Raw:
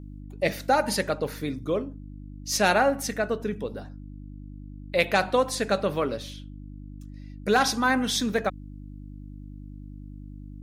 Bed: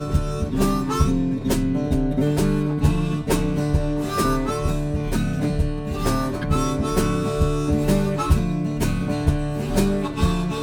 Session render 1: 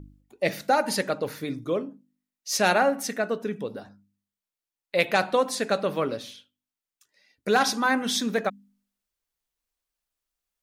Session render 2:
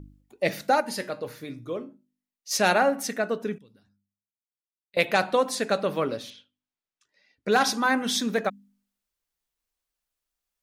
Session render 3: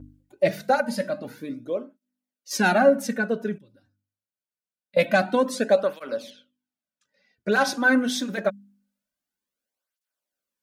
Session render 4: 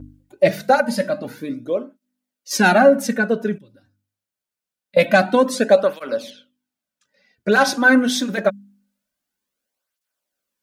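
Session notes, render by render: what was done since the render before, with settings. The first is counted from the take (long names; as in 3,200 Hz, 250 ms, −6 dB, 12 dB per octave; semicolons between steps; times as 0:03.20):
hum removal 50 Hz, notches 6
0:00.80–0:02.51: tuned comb filter 120 Hz, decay 0.27 s; 0:03.58–0:04.97: guitar amp tone stack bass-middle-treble 6-0-2; 0:06.30–0:07.52: high-frequency loss of the air 94 metres
hollow resonant body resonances 230/560/1,500 Hz, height 10 dB, ringing for 30 ms; through-zero flanger with one copy inverted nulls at 0.25 Hz, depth 5.2 ms
level +6 dB; brickwall limiter −2 dBFS, peak gain reduction 2 dB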